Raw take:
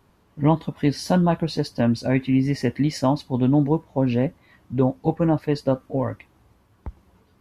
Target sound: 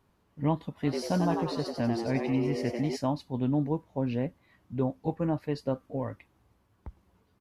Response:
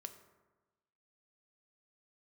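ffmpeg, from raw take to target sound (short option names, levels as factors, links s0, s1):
-filter_complex "[0:a]asplit=3[s0][s1][s2];[s0]afade=t=out:st=0.82:d=0.02[s3];[s1]asplit=8[s4][s5][s6][s7][s8][s9][s10][s11];[s5]adelay=94,afreqshift=110,volume=0.562[s12];[s6]adelay=188,afreqshift=220,volume=0.292[s13];[s7]adelay=282,afreqshift=330,volume=0.151[s14];[s8]adelay=376,afreqshift=440,volume=0.0794[s15];[s9]adelay=470,afreqshift=550,volume=0.0412[s16];[s10]adelay=564,afreqshift=660,volume=0.0214[s17];[s11]adelay=658,afreqshift=770,volume=0.0111[s18];[s4][s12][s13][s14][s15][s16][s17][s18]amix=inputs=8:normalize=0,afade=t=in:st=0.82:d=0.02,afade=t=out:st=2.95:d=0.02[s19];[s2]afade=t=in:st=2.95:d=0.02[s20];[s3][s19][s20]amix=inputs=3:normalize=0,volume=0.355"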